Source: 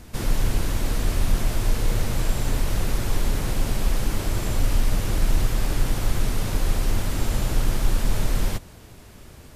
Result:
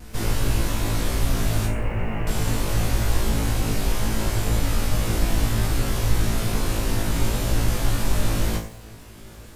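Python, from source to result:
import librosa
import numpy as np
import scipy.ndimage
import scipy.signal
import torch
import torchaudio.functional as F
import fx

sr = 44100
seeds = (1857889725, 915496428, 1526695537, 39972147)

p1 = fx.cheby_ripple(x, sr, hz=2900.0, ripple_db=3, at=(1.66, 2.27))
p2 = p1 + fx.room_flutter(p1, sr, wall_m=3.1, rt60_s=0.33, dry=0)
p3 = fx.vibrato(p2, sr, rate_hz=0.43, depth_cents=10.0)
y = fx.echo_crushed(p3, sr, ms=91, feedback_pct=35, bits=7, wet_db=-14.0)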